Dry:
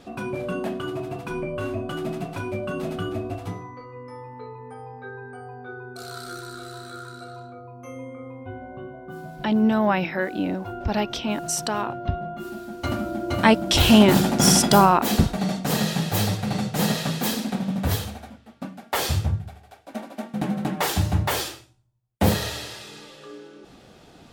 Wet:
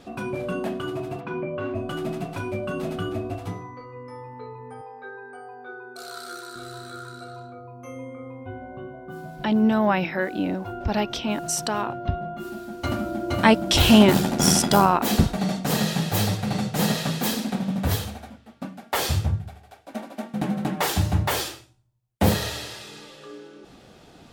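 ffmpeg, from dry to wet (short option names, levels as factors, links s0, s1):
-filter_complex "[0:a]asplit=3[s0][s1][s2];[s0]afade=t=out:st=1.19:d=0.02[s3];[s1]highpass=120,lowpass=2600,afade=t=in:st=1.19:d=0.02,afade=t=out:st=1.74:d=0.02[s4];[s2]afade=t=in:st=1.74:d=0.02[s5];[s3][s4][s5]amix=inputs=3:normalize=0,asettb=1/sr,asplit=3[s6][s7][s8];[s6]atrim=end=4.814[s9];[s7]atrim=start=4.81:end=6.56,asetpts=PTS-STARTPTS,afade=t=in:d=0.004:c=qsin,afade=t=out:st=1.746:d=0.004:c=qsin,highpass=360[s10];[s8]atrim=start=6.556[s11];[s9][s10]acrossfade=d=0.004:c1=hsin:c2=qsin[s12];[s12][s11]acrossfade=d=0.004:c1=qsin:c2=hsin,asplit=3[s13][s14][s15];[s13]afade=t=out:st=14.1:d=0.02[s16];[s14]tremolo=f=82:d=0.519,afade=t=in:st=14.1:d=0.02,afade=t=out:st=15:d=0.02[s17];[s15]afade=t=in:st=15:d=0.02[s18];[s16][s17][s18]amix=inputs=3:normalize=0"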